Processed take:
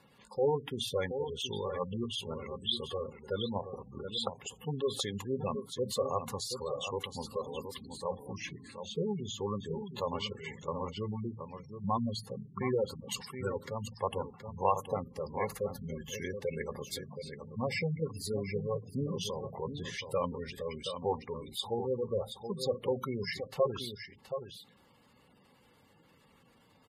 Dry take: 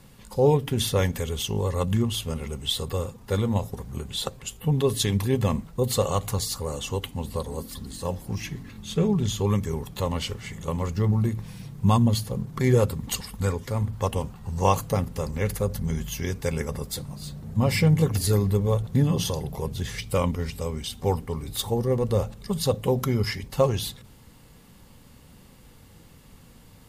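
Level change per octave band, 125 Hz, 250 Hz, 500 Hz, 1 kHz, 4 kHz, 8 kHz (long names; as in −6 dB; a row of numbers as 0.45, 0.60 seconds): −16.5, −12.0, −7.0, −6.0, −6.5, −12.0 decibels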